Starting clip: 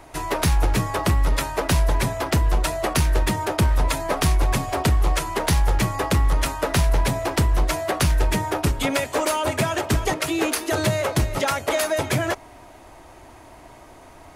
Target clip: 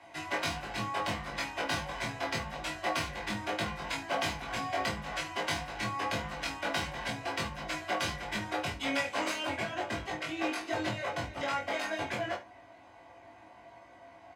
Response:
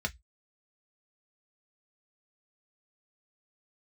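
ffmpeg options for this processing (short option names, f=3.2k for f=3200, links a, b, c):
-filter_complex "[0:a]asetnsamples=n=441:p=0,asendcmd='9.47 lowpass f 1400',lowpass=f=3.1k:p=1,aeval=exprs='0.141*(abs(mod(val(0)/0.141+3,4)-2)-1)':c=same[a];[1:a]atrim=start_sample=2205,asetrate=48510,aresample=44100[b];[a][b]afir=irnorm=-1:irlink=0,alimiter=limit=-7.5dB:level=0:latency=1:release=331,highpass=f=880:p=1,asplit=2[c][d];[d]adelay=19,volume=-2.5dB[e];[c][e]amix=inputs=2:normalize=0,aecho=1:1:25|73:0.531|0.168,volume=-8.5dB"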